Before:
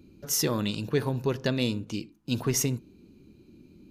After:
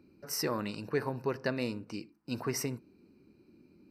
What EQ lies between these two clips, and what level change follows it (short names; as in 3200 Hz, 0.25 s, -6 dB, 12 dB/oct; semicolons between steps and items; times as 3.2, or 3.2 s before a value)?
running mean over 13 samples; tilt +3.5 dB/oct; 0.0 dB